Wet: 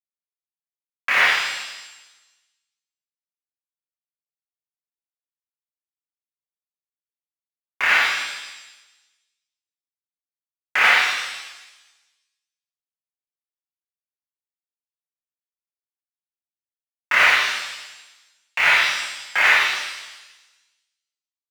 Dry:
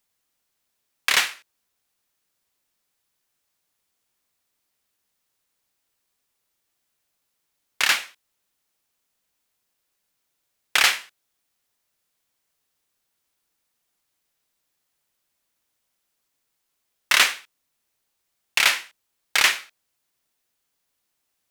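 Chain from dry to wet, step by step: high-order bell 6.6 kHz -15 dB 2.4 oct; overdrive pedal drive 11 dB, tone 3.8 kHz, clips at -5 dBFS; small samples zeroed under -38.5 dBFS; pitch-shifted reverb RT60 1.1 s, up +7 st, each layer -8 dB, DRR -8 dB; trim -5 dB

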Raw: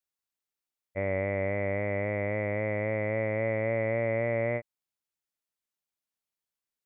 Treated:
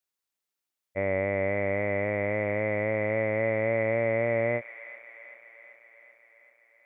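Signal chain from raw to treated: bass shelf 110 Hz -8 dB; feedback echo behind a high-pass 386 ms, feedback 65%, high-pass 1.5 kHz, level -10 dB; trim +3 dB

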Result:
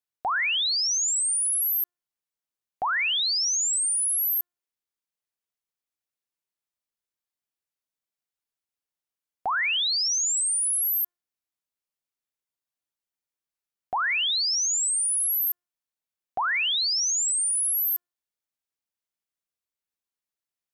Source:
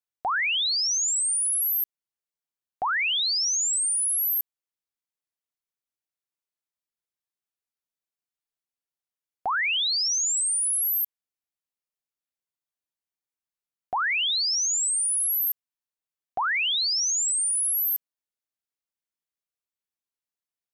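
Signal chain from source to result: de-hum 353.3 Hz, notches 5

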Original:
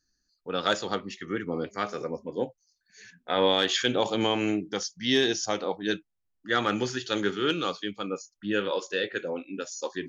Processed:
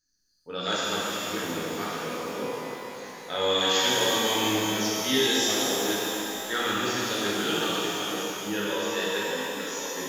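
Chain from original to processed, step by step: treble shelf 3.4 kHz +9 dB; pitch-shifted reverb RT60 3.5 s, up +12 st, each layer -8 dB, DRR -7.5 dB; trim -9 dB

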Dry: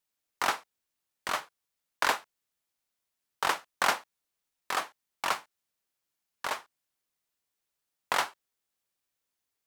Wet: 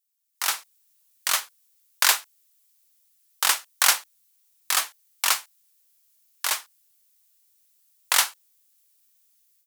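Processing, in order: pre-emphasis filter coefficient 0.97; level rider gain up to 14.5 dB; trim +3 dB

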